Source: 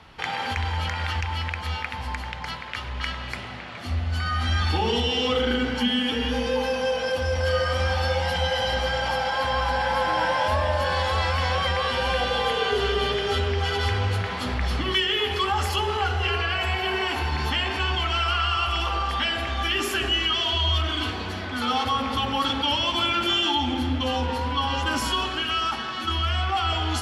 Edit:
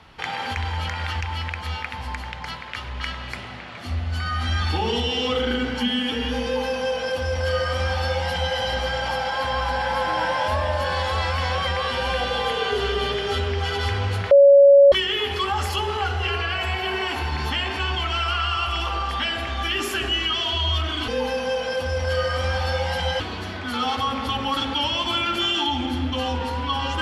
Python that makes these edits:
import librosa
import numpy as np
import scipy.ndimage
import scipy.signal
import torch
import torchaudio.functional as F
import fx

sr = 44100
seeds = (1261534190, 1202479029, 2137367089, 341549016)

y = fx.edit(x, sr, fx.duplicate(start_s=6.44, length_s=2.12, to_s=21.08),
    fx.bleep(start_s=14.31, length_s=0.61, hz=561.0, db=-7.5), tone=tone)